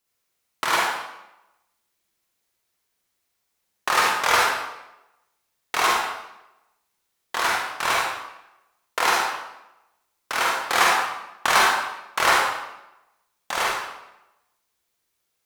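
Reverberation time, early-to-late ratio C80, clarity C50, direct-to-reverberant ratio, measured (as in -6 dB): 0.90 s, 3.0 dB, -0.5 dB, -3.5 dB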